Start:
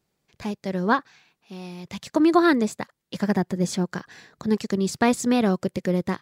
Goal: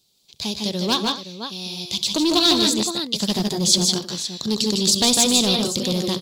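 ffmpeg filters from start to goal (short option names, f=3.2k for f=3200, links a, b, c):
-filter_complex "[0:a]aecho=1:1:66|152|166|238|518:0.126|0.562|0.422|0.112|0.251,asplit=2[a][b];[b]aeval=exprs='0.126*(abs(mod(val(0)/0.126+3,4)-2)-1)':c=same,volume=-3dB[c];[a][c]amix=inputs=2:normalize=0,highshelf=f=2.6k:t=q:w=3:g=13,volume=-4.5dB"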